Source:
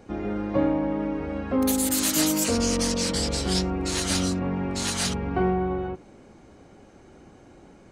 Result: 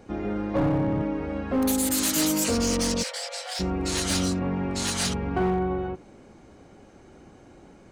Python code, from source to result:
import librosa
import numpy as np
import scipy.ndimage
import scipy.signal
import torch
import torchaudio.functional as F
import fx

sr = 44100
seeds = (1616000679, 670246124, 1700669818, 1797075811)

y = fx.octave_divider(x, sr, octaves=1, level_db=1.0, at=(0.57, 1.02))
y = np.clip(10.0 ** (18.5 / 20.0) * y, -1.0, 1.0) / 10.0 ** (18.5 / 20.0)
y = fx.cheby_ripple_highpass(y, sr, hz=500.0, ripple_db=6, at=(3.02, 3.59), fade=0.02)